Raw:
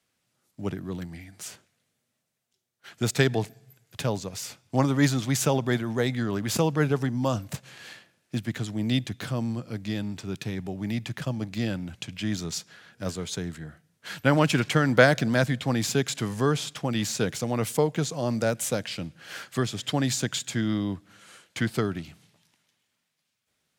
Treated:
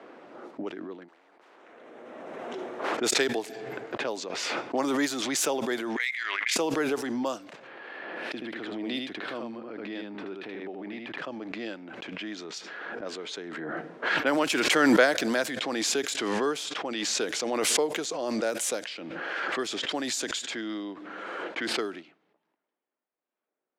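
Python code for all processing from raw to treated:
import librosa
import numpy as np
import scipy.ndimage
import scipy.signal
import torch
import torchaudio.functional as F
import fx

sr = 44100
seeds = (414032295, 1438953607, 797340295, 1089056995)

y = fx.chain(x, sr, fx.peak_eq(hz=4600.0, db=-7.0, octaves=0.4),
    fx.spectral_comp(ratio=10.0), at=(1.08, 2.97))
y = fx.chain(y, sr, fx.highpass_res(hz=2100.0, q=6.3),
    fx.level_steps(step_db=9), at=(5.96, 6.56))
y = fx.chain(y, sr, fx.peak_eq(hz=6800.0, db=-10.5, octaves=0.81),
    fx.echo_single(ms=78, db=-3.5),
    fx.pre_swell(db_per_s=70.0), at=(7.67, 11.18))
y = scipy.signal.sosfilt(scipy.signal.cheby1(3, 1.0, 320.0, 'highpass', fs=sr, output='sos'), y)
y = fx.env_lowpass(y, sr, base_hz=880.0, full_db=-24.5)
y = fx.pre_swell(y, sr, db_per_s=20.0)
y = y * 10.0 ** (-2.5 / 20.0)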